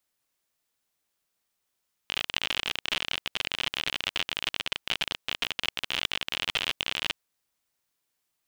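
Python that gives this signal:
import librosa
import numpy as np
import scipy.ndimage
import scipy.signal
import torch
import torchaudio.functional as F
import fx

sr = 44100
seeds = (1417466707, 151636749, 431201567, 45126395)

y = fx.geiger_clicks(sr, seeds[0], length_s=5.07, per_s=51.0, level_db=-11.5)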